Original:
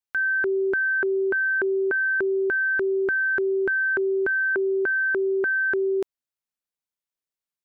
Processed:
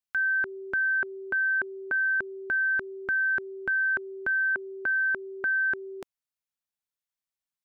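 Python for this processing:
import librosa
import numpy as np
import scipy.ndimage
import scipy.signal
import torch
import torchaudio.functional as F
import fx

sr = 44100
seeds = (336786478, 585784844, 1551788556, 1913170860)

y = fx.peak_eq(x, sr, hz=400.0, db=-15.0, octaves=0.57)
y = y * 10.0 ** (-2.0 / 20.0)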